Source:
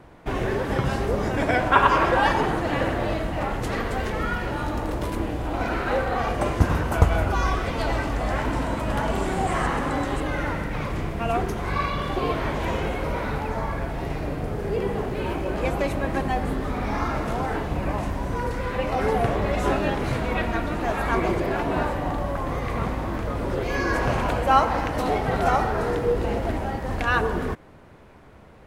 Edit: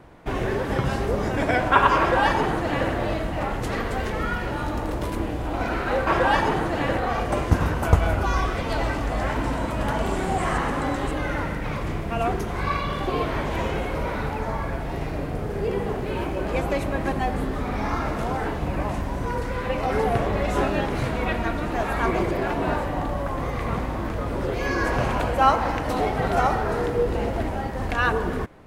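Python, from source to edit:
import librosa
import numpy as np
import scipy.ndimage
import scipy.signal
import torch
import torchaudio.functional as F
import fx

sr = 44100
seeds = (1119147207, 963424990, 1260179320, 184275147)

y = fx.edit(x, sr, fx.duplicate(start_s=1.99, length_s=0.91, to_s=6.07), tone=tone)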